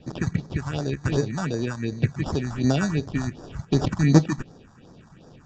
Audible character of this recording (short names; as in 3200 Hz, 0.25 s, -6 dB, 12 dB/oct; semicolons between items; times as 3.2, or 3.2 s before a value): aliases and images of a low sample rate 2100 Hz, jitter 0%; phasing stages 4, 2.7 Hz, lowest notch 420–2800 Hz; Vorbis